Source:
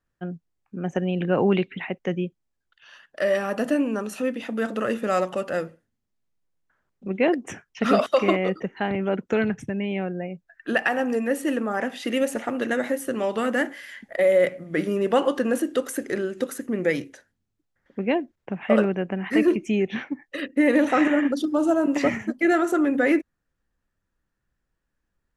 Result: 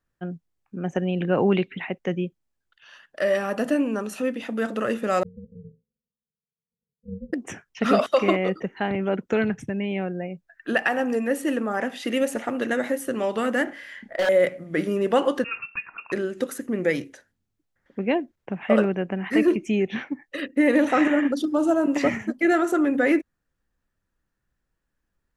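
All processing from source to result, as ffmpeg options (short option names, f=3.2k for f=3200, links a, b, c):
-filter_complex "[0:a]asettb=1/sr,asplit=3[a][b][c];[a]atrim=end=5.234[d];[b]atrim=start=5.23:end=7.33,asetpts=PTS-STARTPTS,afade=t=in:d=0.004:c=qsin,afade=t=out:st=2.096:d=0.004:c=qsin,asuperpass=centerf=180:order=20:qfactor=1.7,tremolo=f=280:d=0.889[e];[c]atrim=start=7.326[f];[d][e]acrossfade=d=0.004:c1=hsin:c2=qsin[g];[g][f]acrossfade=d=0.004:c1=qsin:c2=hsin,asettb=1/sr,asplit=3[h][i][j];[h]atrim=end=13.644[k];[i]atrim=start=13.64:end=14.29,asetpts=PTS-STARTPTS,afade=t=in:d=0.004:c=qsin,afade=t=out:st=0.646:d=0.004:c=qsin,lowpass=f=3.1k:p=1,aeval=exprs='0.141*(abs(mod(val(0)/0.141+3,4)-2)-1)':c=same,asplit=2[l][m];[m]adelay=31,volume=-4dB[n];[l][n]amix=inputs=2:normalize=0,atrim=end_sample=28665[o];[j]atrim=start=14.286[p];[k][o]acrossfade=d=0.004:c1=hsin:c2=qsin[q];[q][p]acrossfade=d=0.004:c1=qsin:c2=hsin,asettb=1/sr,asplit=3[r][s][t];[r]atrim=end=15.444[u];[s]atrim=start=15.44:end=16.12,asetpts=PTS-STARTPTS,afade=t=in:d=0.004:c=qsin,afade=t=out:st=0.676:d=0.004:c=qsin,highpass=f=1.2k:p=1,lowpass=f=2.6k:t=q:w=0.5098,lowpass=f=2.6k:t=q:w=0.6013,lowpass=f=2.6k:t=q:w=0.9,lowpass=f=2.6k:t=q:w=2.563,afreqshift=-3000[v];[t]atrim=start=16.116[w];[u][v]acrossfade=d=0.004:c1=hsin:c2=qsin[x];[x][w]acrossfade=d=0.004:c1=qsin:c2=hsin"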